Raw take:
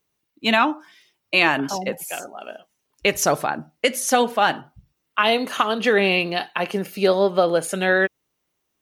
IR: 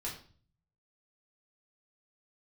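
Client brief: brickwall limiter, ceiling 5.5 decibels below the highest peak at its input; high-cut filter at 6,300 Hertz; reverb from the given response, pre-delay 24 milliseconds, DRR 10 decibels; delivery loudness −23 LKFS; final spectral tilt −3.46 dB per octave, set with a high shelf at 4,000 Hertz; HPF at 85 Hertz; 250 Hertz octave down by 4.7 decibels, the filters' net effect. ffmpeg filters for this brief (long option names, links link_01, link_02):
-filter_complex "[0:a]highpass=85,lowpass=6300,equalizer=frequency=250:width_type=o:gain=-6.5,highshelf=frequency=4000:gain=-6,alimiter=limit=-11dB:level=0:latency=1,asplit=2[link_01][link_02];[1:a]atrim=start_sample=2205,adelay=24[link_03];[link_02][link_03]afir=irnorm=-1:irlink=0,volume=-10.5dB[link_04];[link_01][link_04]amix=inputs=2:normalize=0,volume=1dB"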